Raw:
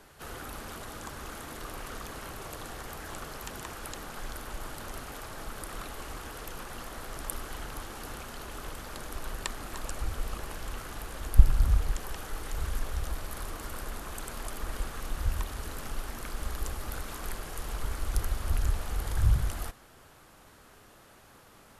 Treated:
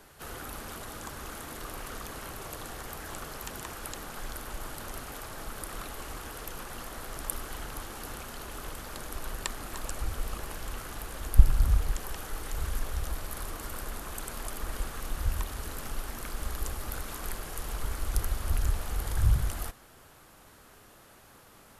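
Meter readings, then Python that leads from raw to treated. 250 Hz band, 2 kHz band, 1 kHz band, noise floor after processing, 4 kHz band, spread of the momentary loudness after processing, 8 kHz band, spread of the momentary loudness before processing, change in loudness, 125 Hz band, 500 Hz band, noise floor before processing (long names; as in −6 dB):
0.0 dB, 0.0 dB, 0.0 dB, −55 dBFS, +0.5 dB, 11 LU, +2.0 dB, 11 LU, +0.5 dB, 0.0 dB, 0.0 dB, −56 dBFS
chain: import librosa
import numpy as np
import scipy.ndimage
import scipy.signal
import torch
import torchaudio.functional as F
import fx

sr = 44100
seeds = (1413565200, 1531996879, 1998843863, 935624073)

y = fx.high_shelf(x, sr, hz=11000.0, db=6.5)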